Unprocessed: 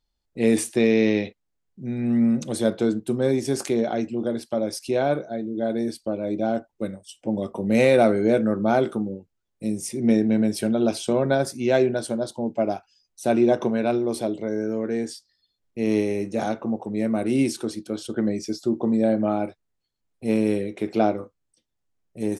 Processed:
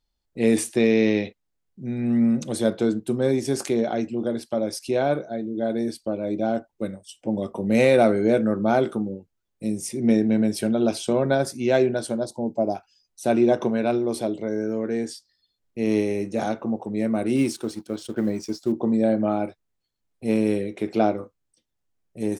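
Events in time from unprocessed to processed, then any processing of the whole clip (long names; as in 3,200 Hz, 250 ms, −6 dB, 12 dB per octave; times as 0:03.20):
0:12.25–0:12.75: flat-topped bell 2,100 Hz −15.5 dB
0:17.36–0:18.72: mu-law and A-law mismatch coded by A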